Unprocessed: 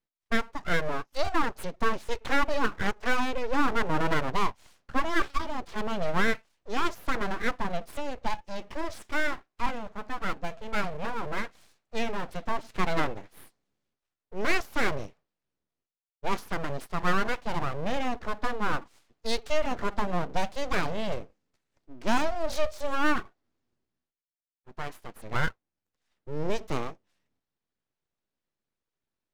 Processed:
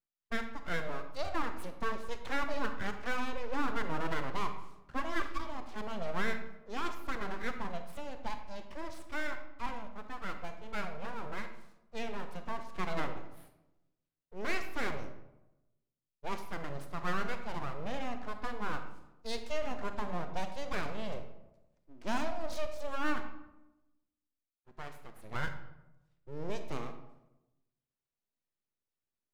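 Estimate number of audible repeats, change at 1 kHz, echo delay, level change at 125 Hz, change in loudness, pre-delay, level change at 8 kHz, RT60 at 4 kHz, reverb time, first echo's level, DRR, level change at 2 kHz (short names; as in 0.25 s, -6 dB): none, -8.5 dB, none, -8.0 dB, -8.5 dB, 31 ms, -8.5 dB, 0.55 s, 1.0 s, none, 7.5 dB, -8.5 dB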